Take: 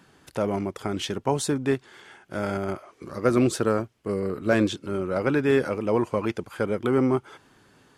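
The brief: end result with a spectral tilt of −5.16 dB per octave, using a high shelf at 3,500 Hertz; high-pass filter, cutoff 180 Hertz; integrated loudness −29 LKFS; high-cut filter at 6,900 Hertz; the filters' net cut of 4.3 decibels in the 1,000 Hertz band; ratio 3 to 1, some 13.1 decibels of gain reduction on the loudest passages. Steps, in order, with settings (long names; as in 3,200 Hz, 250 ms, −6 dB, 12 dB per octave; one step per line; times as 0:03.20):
high-pass filter 180 Hz
low-pass filter 6,900 Hz
parametric band 1,000 Hz −5 dB
high-shelf EQ 3,500 Hz −8 dB
downward compressor 3 to 1, threshold −36 dBFS
level +9 dB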